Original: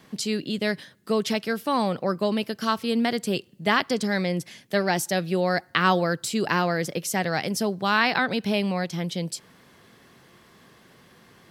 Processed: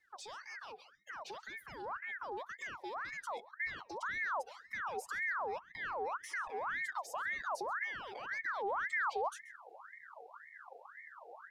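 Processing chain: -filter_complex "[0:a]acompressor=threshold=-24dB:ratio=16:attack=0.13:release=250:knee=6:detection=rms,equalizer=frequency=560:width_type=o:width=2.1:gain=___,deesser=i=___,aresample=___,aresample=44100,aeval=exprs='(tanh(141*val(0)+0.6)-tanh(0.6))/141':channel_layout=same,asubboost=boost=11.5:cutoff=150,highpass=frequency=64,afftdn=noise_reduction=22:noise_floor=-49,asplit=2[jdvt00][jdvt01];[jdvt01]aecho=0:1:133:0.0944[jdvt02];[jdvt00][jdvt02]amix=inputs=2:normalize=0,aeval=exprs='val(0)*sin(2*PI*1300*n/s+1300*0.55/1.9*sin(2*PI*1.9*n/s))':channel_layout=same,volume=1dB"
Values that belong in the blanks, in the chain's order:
-14, 0.6, 32000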